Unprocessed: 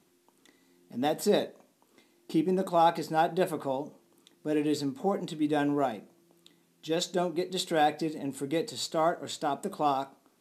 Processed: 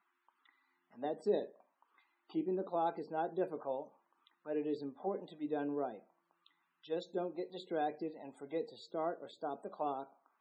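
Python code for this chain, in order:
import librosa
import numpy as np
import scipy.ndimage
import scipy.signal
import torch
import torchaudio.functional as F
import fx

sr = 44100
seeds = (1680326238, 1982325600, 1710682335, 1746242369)

y = fx.tone_stack(x, sr, knobs='5-5-5')
y = fx.auto_wah(y, sr, base_hz=420.0, top_hz=1200.0, q=2.1, full_db=-42.5, direction='down')
y = fx.spec_topn(y, sr, count=64)
y = y * librosa.db_to_amplitude(14.5)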